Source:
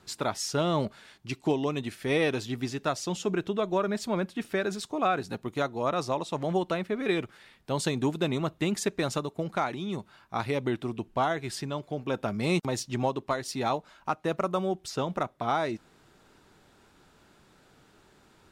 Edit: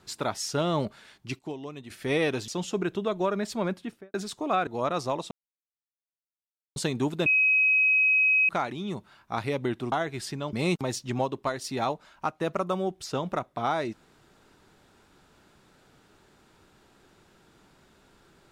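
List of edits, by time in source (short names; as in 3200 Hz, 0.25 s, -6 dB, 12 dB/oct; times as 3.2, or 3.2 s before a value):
1.39–1.9 gain -10 dB
2.48–3 cut
4.24–4.66 studio fade out
5.19–5.69 cut
6.33–7.78 mute
8.28–9.51 bleep 2540 Hz -18.5 dBFS
10.94–11.22 cut
11.83–12.37 cut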